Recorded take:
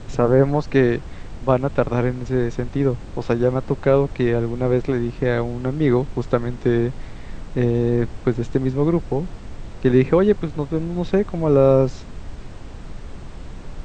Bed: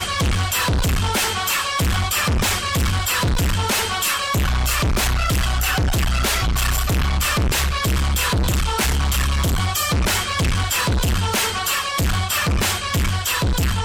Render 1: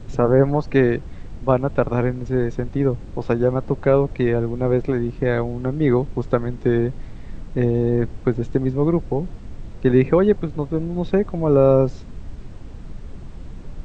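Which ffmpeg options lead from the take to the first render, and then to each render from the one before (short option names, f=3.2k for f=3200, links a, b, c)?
-af "afftdn=nr=7:nf=-36"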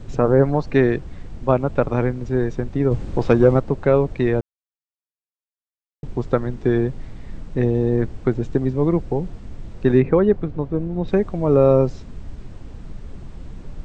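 -filter_complex "[0:a]asettb=1/sr,asplit=3[a][b][c];[a]atrim=end=2.914[d];[b]atrim=start=2.91:end=3.6,asetpts=PTS-STARTPTS,afade=t=in:d=0.004:c=qsin,afade=t=out:st=0.686:d=0.004:c=qsin,acontrast=56[e];[c]atrim=start=3.596[f];[d][e]acrossfade=d=0.004:c1=hsin:c2=qsin[g];[g][f]acrossfade=d=0.004:c1=qsin:c2=hsin,asettb=1/sr,asplit=3[h][i][j];[h]atrim=end=10.004[k];[i]atrim=start=10:end=11.08,asetpts=PTS-STARTPTS,afade=t=in:d=0.004:c=qsin,afade=t=out:st=1.076:d=0.004:c=qsin,lowpass=f=1.8k:p=1[l];[j]atrim=start=11.076[m];[k][l]acrossfade=d=0.004:c1=hsin:c2=qsin[n];[n][m]acrossfade=d=0.004:c1=qsin:c2=hsin,asplit=3[o][p][q];[o]atrim=end=4.41,asetpts=PTS-STARTPTS,afade=t=out:st=4.406:d=0.004:c=hsin[r];[p]atrim=start=4.41:end=6.03,asetpts=PTS-STARTPTS,volume=0[s];[q]atrim=start=6.03,asetpts=PTS-STARTPTS,afade=t=in:d=0.004:c=hsin[t];[r][s][t]concat=n=3:v=0:a=1"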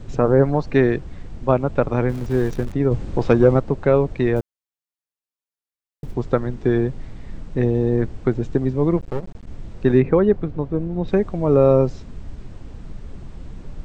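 -filter_complex "[0:a]asettb=1/sr,asplit=3[a][b][c];[a]atrim=end=2.094[d];[b]atrim=start=2.09:end=2.72,asetpts=PTS-STARTPTS,afade=t=in:d=0.004:c=qsin,afade=t=out:st=0.626:d=0.004:c=qsin,aeval=exprs='val(0)+0.5*0.0251*sgn(val(0))':c=same[e];[c]atrim=start=2.716[f];[d][e]acrossfade=d=0.004:c1=hsin:c2=qsin[g];[g][f]acrossfade=d=0.004:c1=qsin:c2=hsin,asettb=1/sr,asplit=3[h][i][j];[h]atrim=end=4.364[k];[i]atrim=start=4.36:end=6.14,asetpts=PTS-STARTPTS,afade=t=in:d=0.004:c=qsin,afade=t=out:st=1.776:d=0.004:c=qsin,acrusher=bits=8:mode=log:mix=0:aa=0.000001[l];[j]atrim=start=6.136[m];[k][l]acrossfade=d=0.004:c1=hsin:c2=qsin[n];[n][m]acrossfade=d=0.004:c1=qsin:c2=hsin,asplit=3[o][p][q];[o]afade=t=out:st=8.96:d=0.02[r];[p]aeval=exprs='max(val(0),0)':c=same,afade=t=in:st=8.96:d=0.02,afade=t=out:st=9.46:d=0.02[s];[q]afade=t=in:st=9.46:d=0.02[t];[r][s][t]amix=inputs=3:normalize=0"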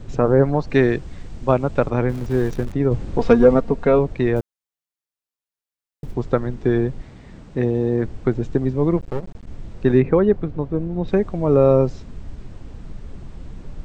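-filter_complex "[0:a]asettb=1/sr,asplit=3[a][b][c];[a]atrim=end=0.704[d];[b]atrim=start=0.7:end=1.9,asetpts=PTS-STARTPTS,afade=t=in:d=0.004:c=qsin,afade=t=out:st=1.196:d=0.004:c=qsin,highshelf=f=3.5k:g=7.5[e];[c]atrim=start=1.896[f];[d][e]acrossfade=d=0.004:c1=hsin:c2=qsin[g];[g][f]acrossfade=d=0.004:c1=qsin:c2=hsin,asettb=1/sr,asplit=3[h][i][j];[h]atrim=end=3.184[k];[i]atrim=start=3.18:end=3.99,asetpts=PTS-STARTPTS,afade=t=in:d=0.004:c=qsin,afade=t=out:st=0.806:d=0.004:c=qsin,aecho=1:1:4.3:0.65,atrim=end_sample=35721[l];[j]atrim=start=3.986[m];[k][l]acrossfade=d=0.004:c1=hsin:c2=qsin[n];[n][m]acrossfade=d=0.004:c1=qsin:c2=hsin,asettb=1/sr,asplit=3[o][p][q];[o]atrim=end=7.014[r];[p]atrim=start=7.01:end=8.05,asetpts=PTS-STARTPTS,afade=t=in:d=0.004:c=qsin,afade=t=out:st=1.036:d=0.004:c=qsin,highpass=f=110:p=1[s];[q]atrim=start=8.046[t];[r][s]acrossfade=d=0.004:c1=hsin:c2=qsin[u];[u][t]acrossfade=d=0.004:c1=qsin:c2=hsin"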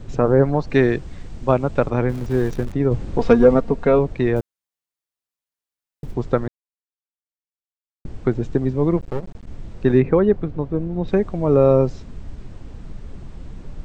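-filter_complex "[0:a]asplit=3[a][b][c];[a]atrim=end=6.48,asetpts=PTS-STARTPTS,afade=t=out:st=6.476:d=0.004:c=hsin[d];[b]atrim=start=6.48:end=8.05,asetpts=PTS-STARTPTS,volume=0[e];[c]atrim=start=8.05,asetpts=PTS-STARTPTS,afade=t=in:d=0.004:c=hsin[f];[d][e][f]concat=n=3:v=0:a=1"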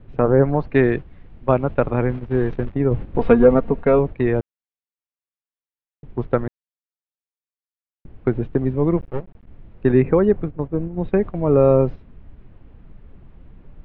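-af "agate=range=-9dB:threshold=-24dB:ratio=16:detection=peak,lowpass=f=3k:w=0.5412,lowpass=f=3k:w=1.3066"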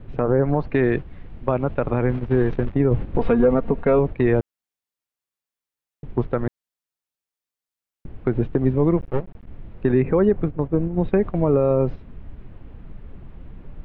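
-filter_complex "[0:a]asplit=2[a][b];[b]acompressor=threshold=-24dB:ratio=6,volume=-2.5dB[c];[a][c]amix=inputs=2:normalize=0,alimiter=limit=-8.5dB:level=0:latency=1:release=88"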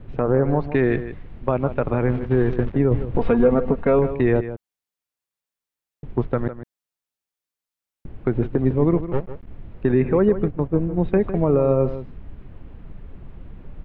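-af "aecho=1:1:155:0.251"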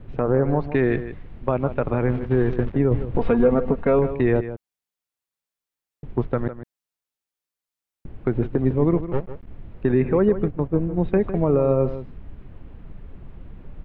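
-af "volume=-1dB"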